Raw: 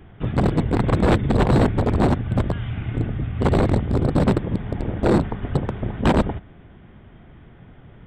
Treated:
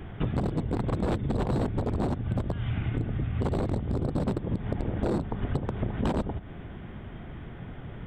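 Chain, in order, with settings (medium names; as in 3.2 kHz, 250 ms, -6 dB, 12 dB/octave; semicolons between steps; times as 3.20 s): dynamic bell 2 kHz, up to -5 dB, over -40 dBFS, Q 0.99; compression 12:1, threshold -30 dBFS, peak gain reduction 16 dB; trim +5 dB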